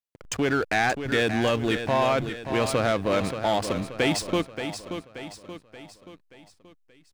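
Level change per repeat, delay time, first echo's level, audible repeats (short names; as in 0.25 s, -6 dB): -6.5 dB, 0.579 s, -9.0 dB, 5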